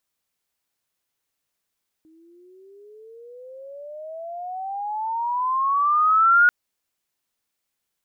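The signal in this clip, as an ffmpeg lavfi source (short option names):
-f lavfi -i "aevalsrc='pow(10,(-11+39.5*(t/4.44-1))/20)*sin(2*PI*314*4.44/(26.5*log(2)/12)*(exp(26.5*log(2)/12*t/4.44)-1))':d=4.44:s=44100"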